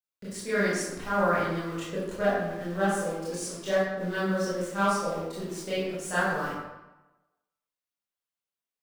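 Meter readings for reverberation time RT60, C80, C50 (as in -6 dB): 1.0 s, 2.0 dB, -1.5 dB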